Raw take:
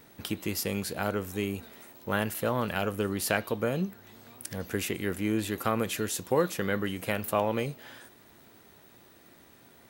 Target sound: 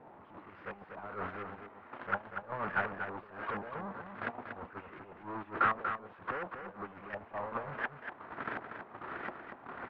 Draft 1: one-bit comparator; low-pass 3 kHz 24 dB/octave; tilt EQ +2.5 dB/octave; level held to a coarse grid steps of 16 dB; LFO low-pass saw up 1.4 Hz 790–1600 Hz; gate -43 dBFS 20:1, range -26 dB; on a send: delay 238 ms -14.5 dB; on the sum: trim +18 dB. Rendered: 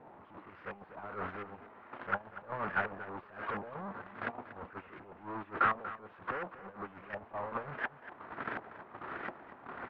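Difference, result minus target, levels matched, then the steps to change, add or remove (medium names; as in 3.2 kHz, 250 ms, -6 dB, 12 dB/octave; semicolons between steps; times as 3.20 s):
echo-to-direct -7 dB
change: delay 238 ms -7.5 dB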